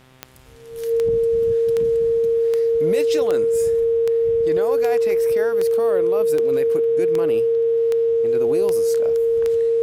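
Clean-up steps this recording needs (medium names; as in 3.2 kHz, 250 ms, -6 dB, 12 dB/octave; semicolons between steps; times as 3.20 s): de-click; de-hum 129.6 Hz, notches 29; band-stop 460 Hz, Q 30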